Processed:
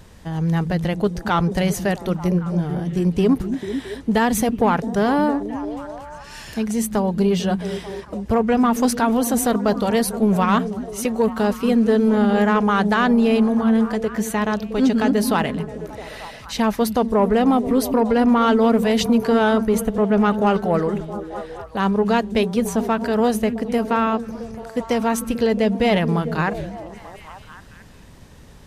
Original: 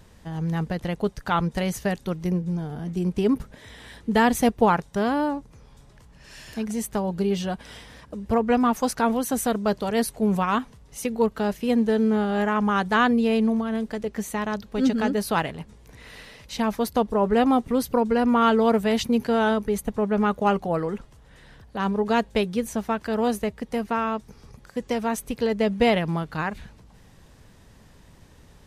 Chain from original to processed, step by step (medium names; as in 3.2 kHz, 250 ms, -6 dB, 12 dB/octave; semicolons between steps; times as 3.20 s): peak limiter -14 dBFS, peak gain reduction 6 dB; repeats whose band climbs or falls 222 ms, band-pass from 190 Hz, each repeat 0.7 oct, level -6 dB; saturation -13 dBFS, distortion -23 dB; trim +6 dB